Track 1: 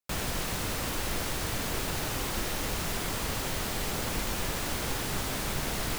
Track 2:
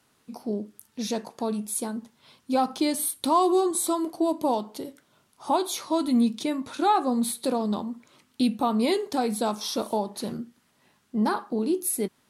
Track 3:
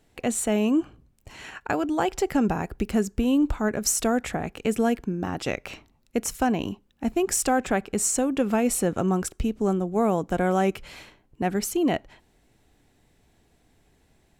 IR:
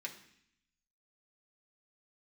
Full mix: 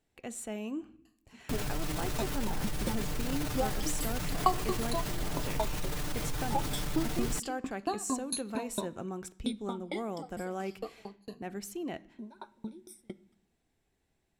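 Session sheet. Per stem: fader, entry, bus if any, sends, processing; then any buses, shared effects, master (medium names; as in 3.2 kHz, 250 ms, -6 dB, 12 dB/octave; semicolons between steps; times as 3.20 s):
+1.0 dB, 1.40 s, no send, bass shelf 170 Hz +11.5 dB; comb 6.7 ms, depth 75%; peak limiter -27 dBFS, peak gain reduction 17 dB
9.32 s -6.5 dB -> 9.78 s -13.5 dB, 1.05 s, send -8 dB, drifting ripple filter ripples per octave 1.5, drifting -0.3 Hz, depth 22 dB; low-pass 10 kHz; sawtooth tremolo in dB decaying 4.4 Hz, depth 38 dB
-16.0 dB, 0.00 s, send -7 dB, none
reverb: on, RT60 0.65 s, pre-delay 3 ms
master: none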